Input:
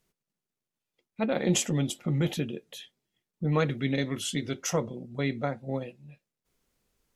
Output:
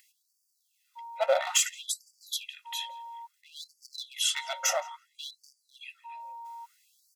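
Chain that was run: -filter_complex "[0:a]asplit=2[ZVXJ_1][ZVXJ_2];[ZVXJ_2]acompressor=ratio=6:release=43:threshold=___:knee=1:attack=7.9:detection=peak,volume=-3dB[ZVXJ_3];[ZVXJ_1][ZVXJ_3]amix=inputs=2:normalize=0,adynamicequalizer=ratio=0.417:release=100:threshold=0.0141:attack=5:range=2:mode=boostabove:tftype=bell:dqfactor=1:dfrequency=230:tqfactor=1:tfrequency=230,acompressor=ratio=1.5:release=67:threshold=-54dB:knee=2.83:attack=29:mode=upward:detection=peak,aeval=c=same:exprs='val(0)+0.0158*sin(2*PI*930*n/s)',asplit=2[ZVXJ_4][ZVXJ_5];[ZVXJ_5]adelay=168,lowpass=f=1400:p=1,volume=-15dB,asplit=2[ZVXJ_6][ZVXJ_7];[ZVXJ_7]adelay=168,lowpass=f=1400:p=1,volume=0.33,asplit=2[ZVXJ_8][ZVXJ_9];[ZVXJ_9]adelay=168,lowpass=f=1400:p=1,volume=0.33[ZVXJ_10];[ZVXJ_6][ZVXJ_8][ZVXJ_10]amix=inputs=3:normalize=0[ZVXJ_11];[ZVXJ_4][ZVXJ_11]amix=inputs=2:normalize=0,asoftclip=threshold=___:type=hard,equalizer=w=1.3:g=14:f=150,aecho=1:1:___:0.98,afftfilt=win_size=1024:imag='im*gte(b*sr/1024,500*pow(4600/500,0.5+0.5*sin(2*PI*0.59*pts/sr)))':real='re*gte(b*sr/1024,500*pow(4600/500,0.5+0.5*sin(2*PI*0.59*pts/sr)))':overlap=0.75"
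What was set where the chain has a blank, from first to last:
-35dB, -19.5dB, 1.5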